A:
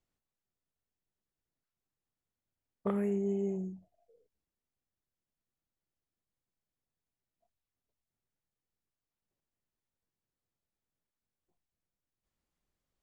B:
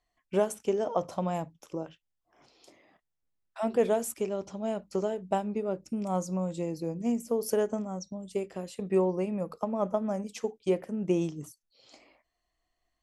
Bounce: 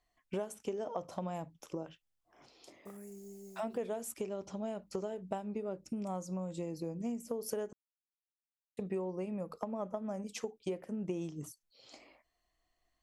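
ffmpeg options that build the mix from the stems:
-filter_complex "[0:a]aeval=exprs='val(0)*gte(abs(val(0)),0.00282)':c=same,aexciter=amount=10.7:drive=4.7:freq=5100,volume=0.126[s0];[1:a]volume=1,asplit=3[s1][s2][s3];[s1]atrim=end=7.73,asetpts=PTS-STARTPTS,afade=t=out:st=7.726:d=0.004:c=hsin[s4];[s2]atrim=start=7.73:end=8.77,asetpts=PTS-STARTPTS,volume=0[s5];[s3]atrim=start=8.77,asetpts=PTS-STARTPTS,afade=t=in:d=0.004:c=hsin[s6];[s4][s5][s6]concat=n=3:v=0:a=1,asplit=2[s7][s8];[s8]apad=whole_len=574403[s9];[s0][s9]sidechaincompress=threshold=0.0224:ratio=8:attack=16:release=114[s10];[s10][s7]amix=inputs=2:normalize=0,acompressor=threshold=0.0158:ratio=4"

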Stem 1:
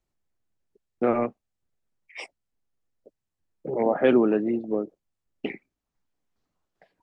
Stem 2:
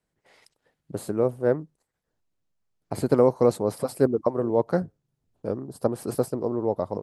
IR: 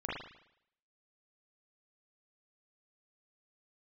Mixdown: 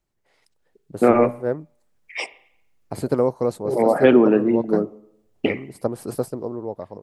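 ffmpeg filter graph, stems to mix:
-filter_complex "[0:a]volume=1.19,asplit=2[s0][s1];[s1]volume=0.119[s2];[1:a]volume=0.422[s3];[2:a]atrim=start_sample=2205[s4];[s2][s4]afir=irnorm=-1:irlink=0[s5];[s0][s3][s5]amix=inputs=3:normalize=0,dynaudnorm=f=150:g=9:m=2.51"

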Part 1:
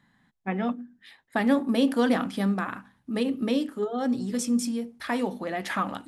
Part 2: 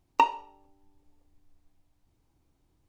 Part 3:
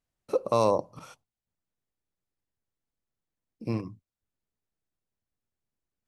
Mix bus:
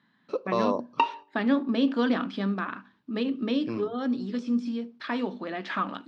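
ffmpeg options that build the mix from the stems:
-filter_complex "[0:a]deesser=0.9,volume=1.12,asplit=2[s0][s1];[1:a]adelay=800,volume=1.12[s2];[2:a]volume=1.06[s3];[s1]apad=whole_len=162425[s4];[s2][s4]sidechaingate=range=0.447:threshold=0.00112:ratio=16:detection=peak[s5];[s0][s5][s3]amix=inputs=3:normalize=0,highpass=220,equalizer=f=520:t=q:w=4:g=-5,equalizer=f=780:t=q:w=4:g=-8,equalizer=f=2000:t=q:w=4:g=-5,lowpass=f=4600:w=0.5412,lowpass=f=4600:w=1.3066"

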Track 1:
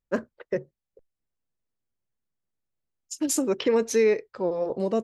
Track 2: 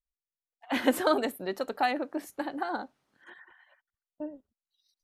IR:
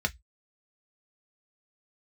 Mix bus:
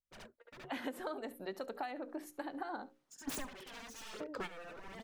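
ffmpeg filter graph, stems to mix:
-filter_complex "[0:a]aeval=exprs='0.0316*(abs(mod(val(0)/0.0316+3,4)-2)-1)':c=same,aphaser=in_gain=1:out_gain=1:delay=4.3:decay=0.54:speed=1.2:type=sinusoidal,volume=0.841,asplit=2[s0][s1];[s1]volume=0.141[s2];[1:a]bandreject=f=60:t=h:w=6,bandreject=f=120:t=h:w=6,bandreject=f=180:t=h:w=6,bandreject=f=240:t=h:w=6,bandreject=f=300:t=h:w=6,bandreject=f=360:t=h:w=6,bandreject=f=420:t=h:w=6,bandreject=f=480:t=h:w=6,bandreject=f=540:t=h:w=6,adynamicequalizer=threshold=0.00708:dfrequency=2100:dqfactor=0.7:tfrequency=2100:tqfactor=0.7:attack=5:release=100:ratio=0.375:range=3.5:mode=cutabove:tftype=highshelf,volume=0.501,asplit=3[s3][s4][s5];[s4]volume=0.0891[s6];[s5]apad=whole_len=222057[s7];[s0][s7]sidechaingate=range=0.112:threshold=0.00112:ratio=16:detection=peak[s8];[s2][s6]amix=inputs=2:normalize=0,aecho=0:1:70:1[s9];[s8][s3][s9]amix=inputs=3:normalize=0,acompressor=threshold=0.0141:ratio=12"

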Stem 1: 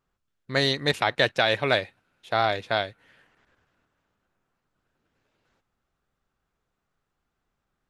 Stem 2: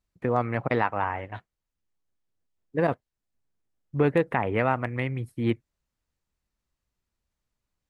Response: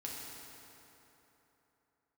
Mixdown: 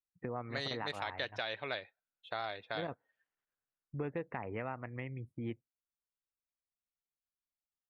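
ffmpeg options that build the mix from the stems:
-filter_complex "[0:a]lowshelf=f=400:g=-7.5,volume=0.668[s0];[1:a]volume=0.531[s1];[s0][s1]amix=inputs=2:normalize=0,afftdn=nr=25:nf=-49,acompressor=threshold=0.00631:ratio=2"

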